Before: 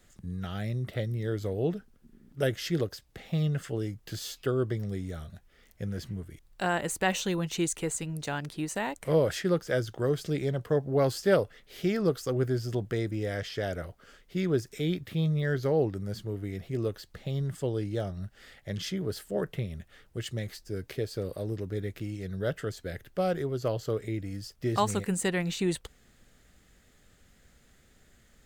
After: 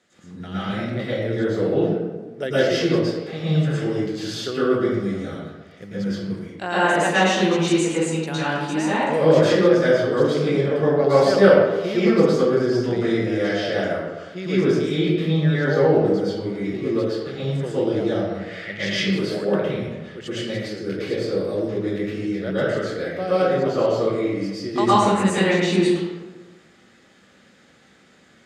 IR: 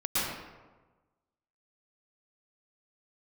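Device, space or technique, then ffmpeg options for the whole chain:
supermarket ceiling speaker: -filter_complex "[0:a]asettb=1/sr,asplit=3[link_01][link_02][link_03];[link_01]atrim=end=18.084[link_04];[link_02]atrim=start=18.08:end=18.93,asetpts=PTS-STARTPTS,afade=type=in:duration=0.004:curve=qsin,afade=type=out:start_time=0.846:duration=0.004:curve=qsin,equalizer=frequency=2100:width=1.5:gain=11.5[link_05];[link_03]atrim=start=18.926[link_06];[link_04][link_05]acrossfade=duration=0.004:curve1=hsin:curve2=qsin[link_07];[link_07][link_06]acrossfade=duration=0.004:curve1=qsin:curve2=hsin,highpass=220,lowpass=6100[link_08];[1:a]atrim=start_sample=2205[link_09];[link_08][link_09]afir=irnorm=-1:irlink=0,volume=2dB"

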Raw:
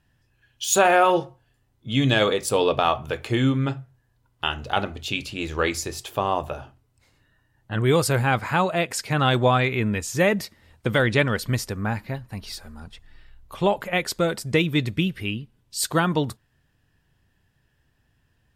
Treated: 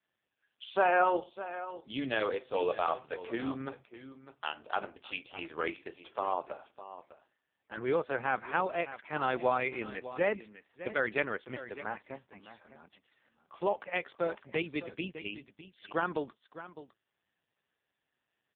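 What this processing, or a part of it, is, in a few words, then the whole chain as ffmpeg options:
satellite phone: -filter_complex "[0:a]asplit=3[link_01][link_02][link_03];[link_01]afade=type=out:start_time=2.27:duration=0.02[link_04];[link_02]bandreject=frequency=257.9:width_type=h:width=4,bandreject=frequency=515.8:width_type=h:width=4,bandreject=frequency=773.7:width_type=h:width=4,bandreject=frequency=1031.6:width_type=h:width=4,bandreject=frequency=1289.5:width_type=h:width=4,bandreject=frequency=1547.4:width_type=h:width=4,bandreject=frequency=1805.3:width_type=h:width=4,bandreject=frequency=2063.2:width_type=h:width=4,bandreject=frequency=2321.1:width_type=h:width=4,bandreject=frequency=2579:width_type=h:width=4,bandreject=frequency=2836.9:width_type=h:width=4,bandreject=frequency=3094.8:width_type=h:width=4,bandreject=frequency=3352.7:width_type=h:width=4,bandreject=frequency=3610.6:width_type=h:width=4,bandreject=frequency=3868.5:width_type=h:width=4,bandreject=frequency=4126.4:width_type=h:width=4,bandreject=frequency=4384.3:width_type=h:width=4,bandreject=frequency=4642.2:width_type=h:width=4,bandreject=frequency=4900.1:width_type=h:width=4,bandreject=frequency=5158:width_type=h:width=4,bandreject=frequency=5415.9:width_type=h:width=4,bandreject=frequency=5673.8:width_type=h:width=4,afade=type=in:start_time=2.27:duration=0.02,afade=type=out:start_time=3.05:duration=0.02[link_05];[link_03]afade=type=in:start_time=3.05:duration=0.02[link_06];[link_04][link_05][link_06]amix=inputs=3:normalize=0,highpass=350,lowpass=3300,aecho=1:1:606:0.2,volume=-7.5dB" -ar 8000 -c:a libopencore_amrnb -b:a 4750

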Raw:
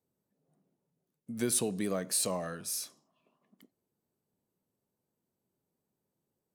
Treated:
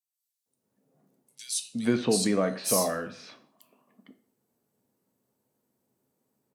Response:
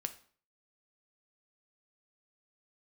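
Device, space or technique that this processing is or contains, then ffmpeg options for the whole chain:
far laptop microphone: -filter_complex "[1:a]atrim=start_sample=2205[link_01];[0:a][link_01]afir=irnorm=-1:irlink=0,highpass=frequency=140:poles=1,dynaudnorm=framelen=120:gausssize=3:maxgain=9.5dB,asettb=1/sr,asplit=3[link_02][link_03][link_04];[link_02]atrim=end=1.354[link_05];[link_03]atrim=start=1.35:end=2.64,asetpts=PTS-STARTPTS,afade=type=in:duration=0.004:curve=qsin,afade=type=out:start_time=1.286:duration=0.004:curve=qsin,lowpass=5700[link_06];[link_04]atrim=start=2.636[link_07];[link_05][link_06]acrossfade=duration=0.004:curve1=hsin:curve2=qsin[link_08];[link_08][link_07]acrossfade=duration=0.004:curve1=qsin:curve2=hsin,acrossover=split=3300[link_09][link_10];[link_09]adelay=460[link_11];[link_11][link_10]amix=inputs=2:normalize=0"

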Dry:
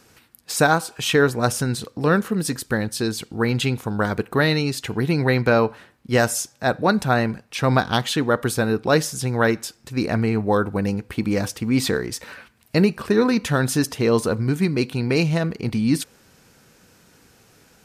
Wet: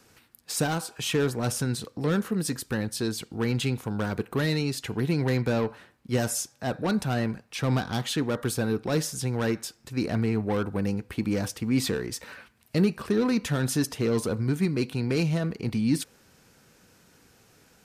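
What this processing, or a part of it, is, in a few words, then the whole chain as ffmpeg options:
one-band saturation: -filter_complex "[0:a]acrossover=split=360|4900[link_01][link_02][link_03];[link_02]asoftclip=type=tanh:threshold=-23dB[link_04];[link_01][link_04][link_03]amix=inputs=3:normalize=0,volume=-4.5dB"

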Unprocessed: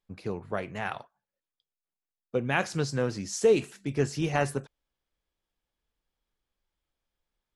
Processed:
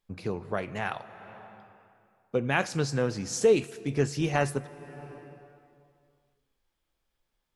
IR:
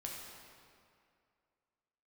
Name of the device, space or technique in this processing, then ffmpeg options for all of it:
ducked reverb: -filter_complex "[0:a]asplit=3[link_01][link_02][link_03];[1:a]atrim=start_sample=2205[link_04];[link_02][link_04]afir=irnorm=-1:irlink=0[link_05];[link_03]apad=whole_len=333165[link_06];[link_05][link_06]sidechaincompress=threshold=-39dB:ratio=8:attack=12:release=468,volume=0.5dB[link_07];[link_01][link_07]amix=inputs=2:normalize=0"

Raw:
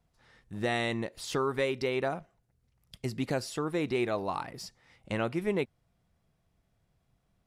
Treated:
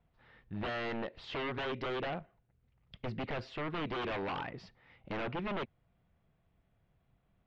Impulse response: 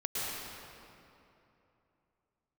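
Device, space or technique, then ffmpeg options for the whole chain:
synthesiser wavefolder: -filter_complex "[0:a]asettb=1/sr,asplit=3[link_01][link_02][link_03];[link_01]atrim=end=4.014[link_04];[link_02]atrim=start=4.01:end=4.49,asetpts=PTS-STARTPTS,afade=type=in:duration=0.004:curve=qsin,afade=type=out:start_time=0.476:duration=0.004:curve=qsin,highshelf=frequency=2300:gain=9.5[link_05];[link_03]atrim=start=4.486[link_06];[link_04][link_05]acrossfade=duration=0.004:curve1=hsin:curve2=qsin[link_07];[link_07][link_06]acrossfade=duration=0.004:curve1=qsin:curve2=hsin,aeval=exprs='0.0282*(abs(mod(val(0)/0.0282+3,4)-2)-1)':channel_layout=same,lowpass=frequency=3300:width=0.5412,lowpass=frequency=3300:width=1.3066"

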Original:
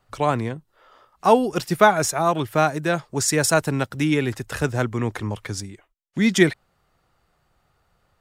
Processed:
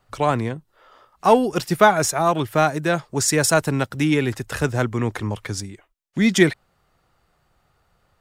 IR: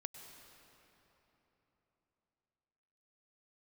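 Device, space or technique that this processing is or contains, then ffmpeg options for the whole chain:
parallel distortion: -filter_complex "[0:a]asplit=2[link_01][link_02];[link_02]asoftclip=type=hard:threshold=-16.5dB,volume=-13.5dB[link_03];[link_01][link_03]amix=inputs=2:normalize=0"

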